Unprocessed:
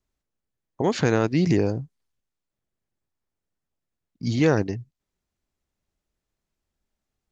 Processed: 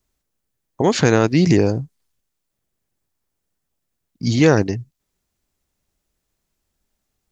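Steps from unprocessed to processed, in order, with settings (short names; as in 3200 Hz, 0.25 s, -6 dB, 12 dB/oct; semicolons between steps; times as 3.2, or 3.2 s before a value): high shelf 6100 Hz +8 dB; gain +6 dB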